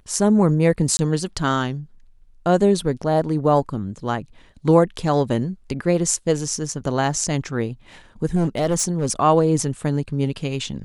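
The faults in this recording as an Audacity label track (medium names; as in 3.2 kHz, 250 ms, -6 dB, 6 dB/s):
0.970000	0.990000	dropout 20 ms
8.350000	9.120000	clipped -15.5 dBFS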